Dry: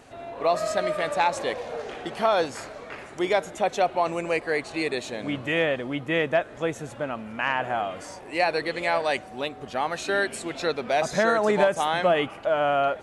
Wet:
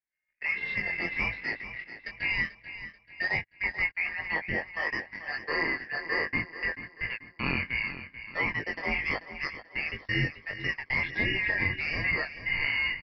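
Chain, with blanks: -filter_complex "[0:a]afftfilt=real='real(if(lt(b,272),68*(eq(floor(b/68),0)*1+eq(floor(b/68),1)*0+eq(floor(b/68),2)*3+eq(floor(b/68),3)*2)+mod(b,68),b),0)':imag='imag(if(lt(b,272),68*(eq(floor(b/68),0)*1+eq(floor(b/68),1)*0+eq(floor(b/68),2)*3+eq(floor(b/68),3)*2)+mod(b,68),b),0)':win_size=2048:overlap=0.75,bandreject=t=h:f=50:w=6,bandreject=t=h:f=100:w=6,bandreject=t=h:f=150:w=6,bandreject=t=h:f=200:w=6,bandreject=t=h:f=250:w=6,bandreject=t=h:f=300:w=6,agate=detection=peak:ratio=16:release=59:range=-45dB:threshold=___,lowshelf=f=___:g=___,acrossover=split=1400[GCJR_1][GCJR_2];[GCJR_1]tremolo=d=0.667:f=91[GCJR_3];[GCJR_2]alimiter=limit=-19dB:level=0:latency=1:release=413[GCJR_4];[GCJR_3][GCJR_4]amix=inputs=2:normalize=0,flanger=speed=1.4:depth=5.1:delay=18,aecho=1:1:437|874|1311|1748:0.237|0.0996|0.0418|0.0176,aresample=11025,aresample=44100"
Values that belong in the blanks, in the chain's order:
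-33dB, 190, 6.5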